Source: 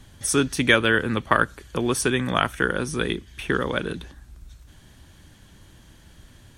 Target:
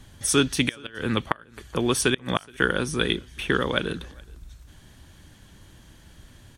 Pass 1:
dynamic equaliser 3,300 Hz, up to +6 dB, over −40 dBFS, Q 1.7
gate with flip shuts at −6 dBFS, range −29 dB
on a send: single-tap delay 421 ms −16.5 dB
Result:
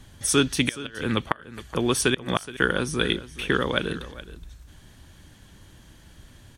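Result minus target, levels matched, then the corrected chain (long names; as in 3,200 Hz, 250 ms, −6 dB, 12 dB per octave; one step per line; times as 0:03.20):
echo-to-direct +10.5 dB
dynamic equaliser 3,300 Hz, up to +6 dB, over −40 dBFS, Q 1.7
gate with flip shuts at −6 dBFS, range −29 dB
on a send: single-tap delay 421 ms −27 dB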